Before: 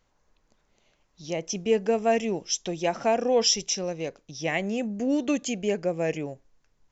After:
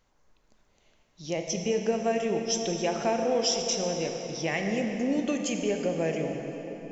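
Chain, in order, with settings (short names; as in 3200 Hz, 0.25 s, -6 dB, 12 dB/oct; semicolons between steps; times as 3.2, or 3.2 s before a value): compressor 2.5:1, threshold -26 dBFS, peak gain reduction 6.5 dB; on a send: reverb RT60 4.5 s, pre-delay 10 ms, DRR 3 dB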